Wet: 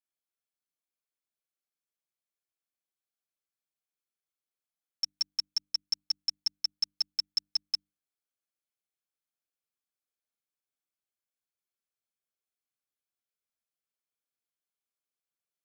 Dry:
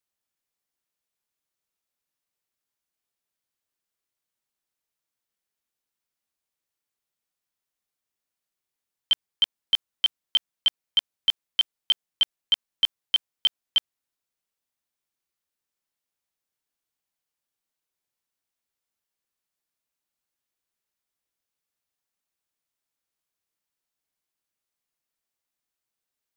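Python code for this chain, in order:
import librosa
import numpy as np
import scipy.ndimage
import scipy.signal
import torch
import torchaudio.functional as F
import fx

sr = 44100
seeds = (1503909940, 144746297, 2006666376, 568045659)

y = fx.speed_glide(x, sr, from_pct=187, to_pct=150)
y = fx.hum_notches(y, sr, base_hz=50, count=6)
y = fx.notch_comb(y, sr, f0_hz=930.0)
y = y * librosa.db_to_amplitude(-6.0)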